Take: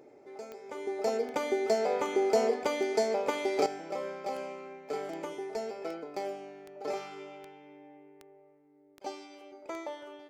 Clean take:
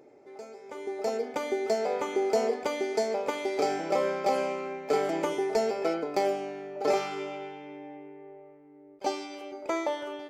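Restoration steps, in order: de-click; trim 0 dB, from 3.66 s +9.5 dB

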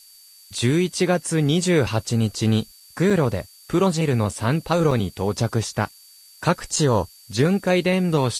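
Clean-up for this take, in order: band-stop 4.6 kHz, Q 30; interpolate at 2.80/3.10/4.31/4.91/6.76 s, 3.8 ms; noise reduction 18 dB, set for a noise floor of -49 dBFS

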